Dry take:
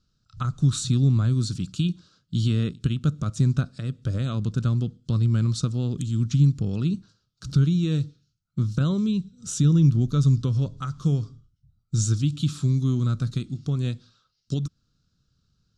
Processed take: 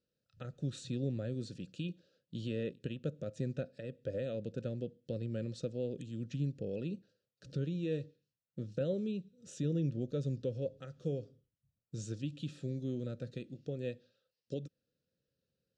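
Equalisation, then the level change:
formant filter e
parametric band 2,100 Hz −8.5 dB 2.8 octaves
+9.5 dB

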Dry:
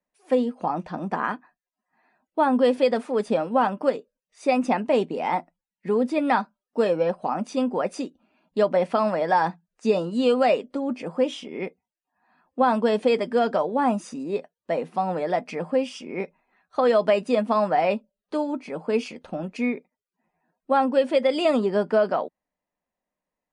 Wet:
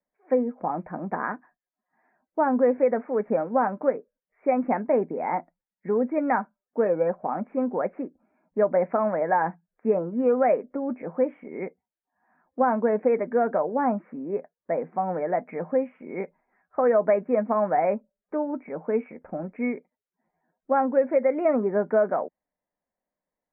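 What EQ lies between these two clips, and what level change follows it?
Chebyshev low-pass with heavy ripple 2,300 Hz, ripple 3 dB
high-frequency loss of the air 210 metres
0.0 dB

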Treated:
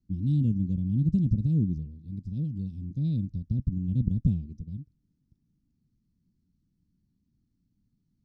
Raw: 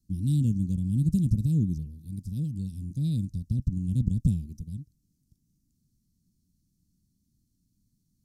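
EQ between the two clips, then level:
high-frequency loss of the air 190 metres
low-shelf EQ 260 Hz −5.5 dB
high-shelf EQ 2,100 Hz −7.5 dB
+4.0 dB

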